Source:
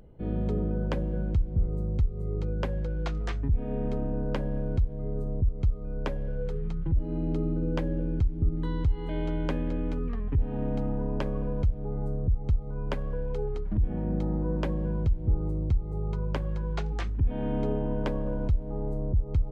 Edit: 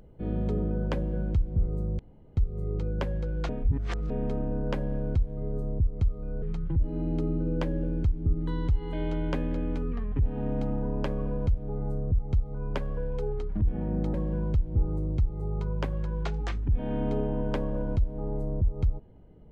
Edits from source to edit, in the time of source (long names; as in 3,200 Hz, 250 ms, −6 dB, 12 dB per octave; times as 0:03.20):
0:01.99: splice in room tone 0.38 s
0:03.11–0:03.72: reverse
0:06.04–0:06.58: remove
0:14.30–0:14.66: remove